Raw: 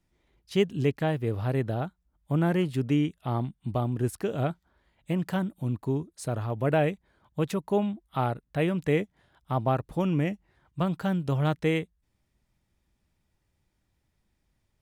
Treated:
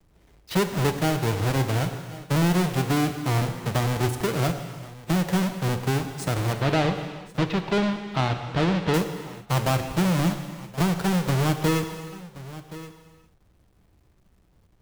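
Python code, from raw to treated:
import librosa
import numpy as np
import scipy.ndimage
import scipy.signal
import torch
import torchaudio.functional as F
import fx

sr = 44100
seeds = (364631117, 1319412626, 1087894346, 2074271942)

y = fx.halfwave_hold(x, sr)
y = fx.lowpass(y, sr, hz=4200.0, slope=24, at=(6.53, 8.94))
y = fx.leveller(y, sr, passes=1)
y = fx.quant_dither(y, sr, seeds[0], bits=12, dither='none')
y = y + 10.0 ** (-24.0 / 20.0) * np.pad(y, (int(1074 * sr / 1000.0), 0))[:len(y)]
y = fx.rev_gated(y, sr, seeds[1], gate_ms=450, shape='falling', drr_db=7.0)
y = fx.band_squash(y, sr, depth_pct=40)
y = F.gain(torch.from_numpy(y), -4.0).numpy()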